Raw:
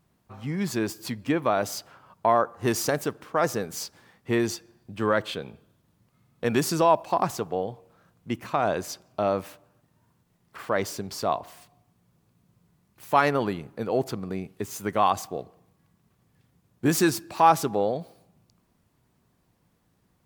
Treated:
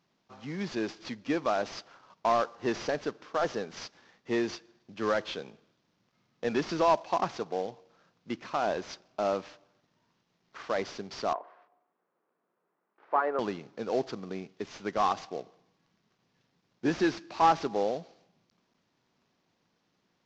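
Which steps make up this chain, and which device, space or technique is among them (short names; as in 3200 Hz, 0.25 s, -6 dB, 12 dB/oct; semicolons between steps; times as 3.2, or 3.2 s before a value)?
early wireless headset (HPF 210 Hz 12 dB/oct; CVSD 32 kbps); 11.33–13.39 Chebyshev band-pass 390–1400 Hz, order 2; gain -3.5 dB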